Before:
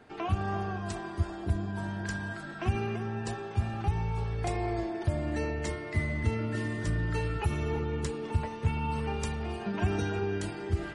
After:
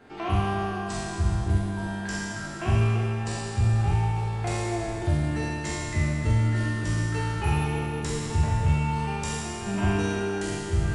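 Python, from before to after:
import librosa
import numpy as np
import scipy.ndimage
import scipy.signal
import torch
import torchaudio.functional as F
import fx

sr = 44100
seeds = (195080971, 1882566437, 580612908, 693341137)

y = fx.spec_trails(x, sr, decay_s=2.47)
y = fx.doubler(y, sr, ms=46.0, db=-5.0)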